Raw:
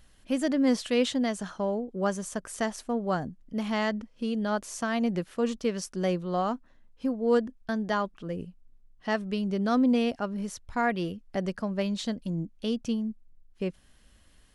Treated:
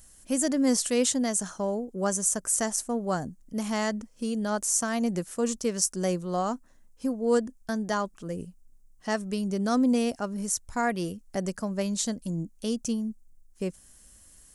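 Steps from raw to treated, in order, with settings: resonant high shelf 5.1 kHz +13.5 dB, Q 1.5

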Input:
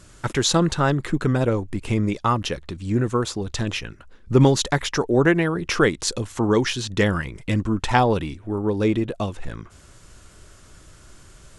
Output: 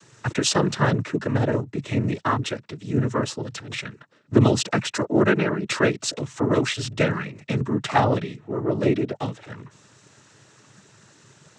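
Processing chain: 3.41–3.88 s: compressor with a negative ratio -29 dBFS, ratio -0.5; noise-vocoded speech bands 12; trim -1 dB

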